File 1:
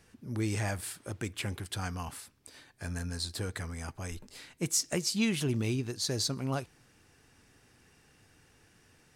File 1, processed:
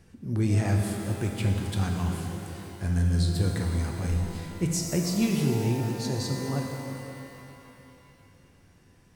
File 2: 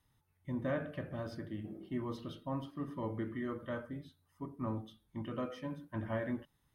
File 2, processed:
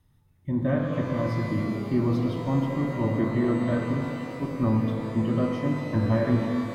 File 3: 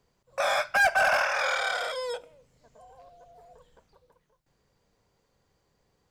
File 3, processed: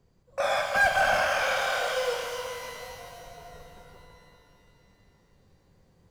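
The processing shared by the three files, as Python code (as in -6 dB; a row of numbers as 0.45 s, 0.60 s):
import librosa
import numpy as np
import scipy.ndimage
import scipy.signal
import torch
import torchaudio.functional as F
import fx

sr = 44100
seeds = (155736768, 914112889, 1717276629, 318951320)

y = fx.low_shelf(x, sr, hz=440.0, db=11.5)
y = fx.rider(y, sr, range_db=4, speed_s=2.0)
y = fx.rev_shimmer(y, sr, seeds[0], rt60_s=2.8, semitones=12, shimmer_db=-8, drr_db=1.5)
y = y * 10.0 ** (-12 / 20.0) / np.max(np.abs(y))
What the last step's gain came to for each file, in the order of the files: -4.5 dB, +4.5 dB, -5.0 dB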